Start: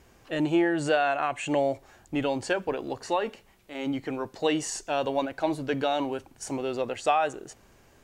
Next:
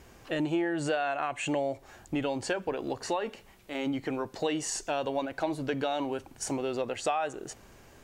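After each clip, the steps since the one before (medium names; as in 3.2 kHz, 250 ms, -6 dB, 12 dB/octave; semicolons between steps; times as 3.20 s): compression 2.5:1, threshold -34 dBFS, peak gain reduction 10.5 dB; trim +3.5 dB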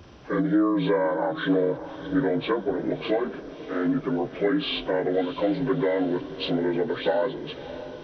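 frequency axis rescaled in octaves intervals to 77%; bass shelf 440 Hz +5 dB; echo that smears into a reverb 644 ms, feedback 52%, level -13 dB; trim +5 dB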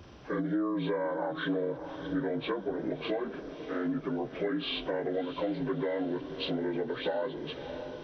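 compression 2:1, threshold -29 dBFS, peak gain reduction 6.5 dB; trim -3 dB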